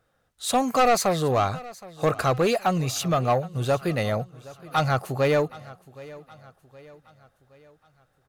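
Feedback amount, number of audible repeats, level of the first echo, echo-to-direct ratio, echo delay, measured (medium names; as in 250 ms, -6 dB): 48%, 3, -20.0 dB, -19.0 dB, 769 ms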